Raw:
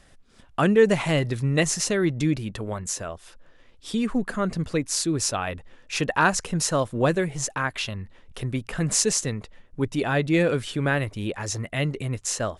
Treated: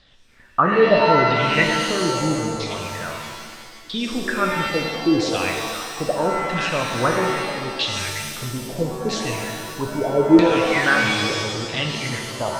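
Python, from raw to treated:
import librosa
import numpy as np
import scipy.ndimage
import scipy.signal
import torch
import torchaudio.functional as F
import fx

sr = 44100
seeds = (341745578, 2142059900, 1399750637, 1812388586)

y = fx.echo_stepped(x, sr, ms=398, hz=2500.0, octaves=0.7, feedback_pct=70, wet_db=-2.5)
y = fx.filter_lfo_lowpass(y, sr, shape='saw_down', hz=0.77, low_hz=310.0, high_hz=4200.0, q=5.6)
y = fx.rev_shimmer(y, sr, seeds[0], rt60_s=1.6, semitones=7, shimmer_db=-2, drr_db=2.0)
y = F.gain(torch.from_numpy(y), -3.0).numpy()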